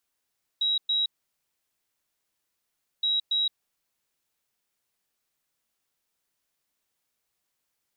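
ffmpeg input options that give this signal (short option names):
-f lavfi -i "aevalsrc='0.0794*sin(2*PI*3850*t)*clip(min(mod(mod(t,2.42),0.28),0.17-mod(mod(t,2.42),0.28))/0.005,0,1)*lt(mod(t,2.42),0.56)':d=4.84:s=44100"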